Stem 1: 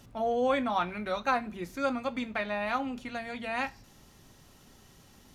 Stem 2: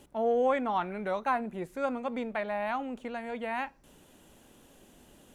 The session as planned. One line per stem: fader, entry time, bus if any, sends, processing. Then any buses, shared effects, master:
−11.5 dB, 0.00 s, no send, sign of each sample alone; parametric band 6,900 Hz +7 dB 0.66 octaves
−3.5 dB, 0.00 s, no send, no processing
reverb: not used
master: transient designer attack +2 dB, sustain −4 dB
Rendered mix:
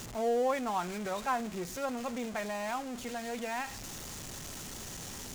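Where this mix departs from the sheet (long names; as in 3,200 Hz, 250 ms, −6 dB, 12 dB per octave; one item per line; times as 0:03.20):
stem 2: polarity flipped
master: missing transient designer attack +2 dB, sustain −4 dB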